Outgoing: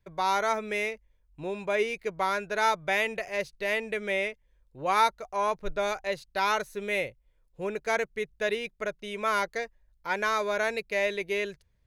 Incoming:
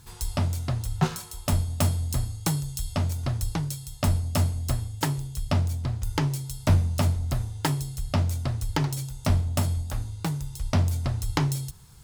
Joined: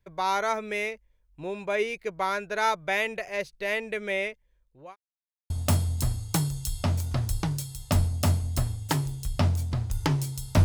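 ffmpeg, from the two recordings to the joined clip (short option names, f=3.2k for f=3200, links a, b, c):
-filter_complex "[0:a]apad=whole_dur=10.64,atrim=end=10.64,asplit=2[a][b];[a]atrim=end=4.96,asetpts=PTS-STARTPTS,afade=t=out:st=4.18:d=0.78:c=qsin[c];[b]atrim=start=4.96:end=5.5,asetpts=PTS-STARTPTS,volume=0[d];[1:a]atrim=start=1.62:end=6.76,asetpts=PTS-STARTPTS,afade=t=in:d=0.004:c=hsin[e];[c][d][e]concat=n=3:v=0:a=1"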